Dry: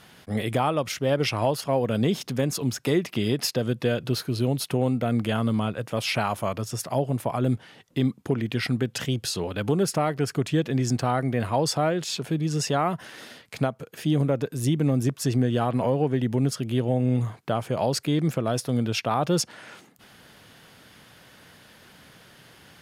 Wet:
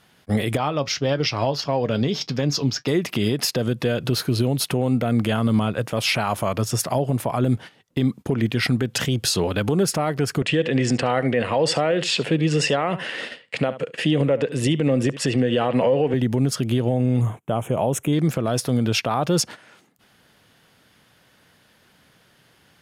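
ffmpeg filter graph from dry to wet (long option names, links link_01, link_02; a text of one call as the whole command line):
ffmpeg -i in.wav -filter_complex "[0:a]asettb=1/sr,asplit=3[link_01][link_02][link_03];[link_01]atrim=end=0.574[link_04];[link_02]atrim=start=0.57:end=2.88,asetpts=PTS-STARTPTS,afade=type=in:duration=0.004:curve=qsin,afade=type=out:start_time=2.306:duration=0.004:curve=qsin,highshelf=frequency=7100:width_type=q:width=3:gain=-11,flanger=delay=6.3:depth=1:regen=68:speed=1.7:shape=sinusoidal[link_05];[link_03]atrim=start=2.876[link_06];[link_04][link_05]acrossfade=duration=0.004:curve1=hsin:curve2=qsin[link_07];[link_07][link_06]acrossfade=duration=0.004:curve1=qsin:curve2=hsin,asettb=1/sr,asplit=3[link_08][link_09][link_10];[link_08]atrim=end=10.424[link_11];[link_09]atrim=start=10.42:end=16.14,asetpts=PTS-STARTPTS,afade=type=in:duration=0.004:curve=qsin,afade=type=out:start_time=5.716:duration=0.004:curve=qsin,highpass=140,equalizer=frequency=510:width_type=q:width=4:gain=9,equalizer=frequency=1900:width_type=q:width=4:gain=8,equalizer=frequency=2800:width_type=q:width=4:gain=10,equalizer=frequency=6200:width_type=q:width=4:gain=-7,lowpass=frequency=8500:width=0.5412,lowpass=frequency=8500:width=1.3066,aecho=1:1:71:0.119,atrim=end_sample=252252[link_12];[link_10]atrim=start=16.136[link_13];[link_11][link_12]acrossfade=duration=0.004:curve1=hsin:curve2=qsin[link_14];[link_14][link_13]acrossfade=duration=0.004:curve1=qsin:curve2=hsin,asettb=1/sr,asplit=3[link_15][link_16][link_17];[link_15]atrim=end=17.214[link_18];[link_16]atrim=start=17.21:end=18.13,asetpts=PTS-STARTPTS,afade=type=in:duration=0.004:curve=qsin,afade=type=out:start_time=0.916:duration=0.004:curve=qsin,asuperstop=centerf=4600:order=4:qfactor=1.4,equalizer=frequency=1700:width=1.6:gain=-7.5[link_19];[link_17]atrim=start=18.126[link_20];[link_18][link_19]acrossfade=duration=0.004:curve1=hsin:curve2=qsin[link_21];[link_21][link_20]acrossfade=duration=0.004:curve1=qsin:curve2=hsin,agate=range=-14dB:threshold=-38dB:ratio=16:detection=peak,alimiter=limit=-19dB:level=0:latency=1:release=120,volume=8dB" out.wav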